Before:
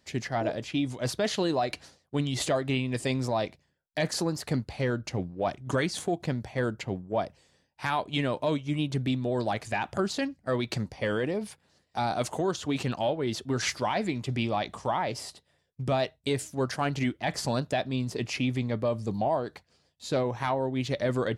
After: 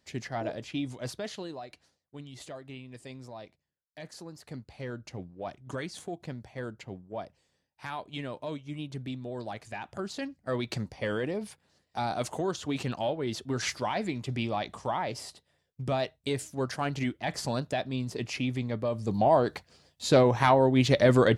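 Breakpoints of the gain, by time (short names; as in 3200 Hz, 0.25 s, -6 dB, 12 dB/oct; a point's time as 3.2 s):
0.93 s -4.5 dB
1.71 s -16 dB
4.23 s -16 dB
4.96 s -9 dB
9.89 s -9 dB
10.57 s -2.5 dB
18.9 s -2.5 dB
19.42 s +7 dB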